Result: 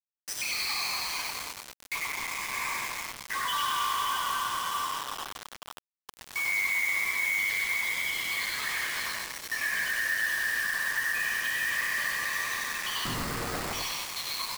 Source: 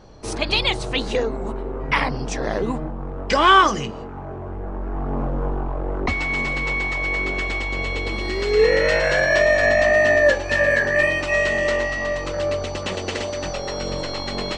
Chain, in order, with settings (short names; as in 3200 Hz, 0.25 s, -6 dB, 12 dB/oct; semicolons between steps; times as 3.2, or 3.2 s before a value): random spectral dropouts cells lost 81%; flange 2 Hz, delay 3.6 ms, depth 8.6 ms, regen -15%; plate-style reverb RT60 3.8 s, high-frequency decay 0.9×, DRR -4 dB; vocal rider within 4 dB 2 s; hard clip -19.5 dBFS, distortion -10 dB; elliptic high-pass 1100 Hz, stop band 70 dB; notch comb 1400 Hz; limiter -26 dBFS, peak gain reduction 10 dB; 1.95–2.53 compressor 6:1, threshold -36 dBFS, peak gain reduction 5.5 dB; 13.05–13.73 sample-rate reducer 3200 Hz, jitter 0%; frequency-shifting echo 96 ms, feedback 35%, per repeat -99 Hz, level -3 dB; bit-crush 6-bit; gain +1.5 dB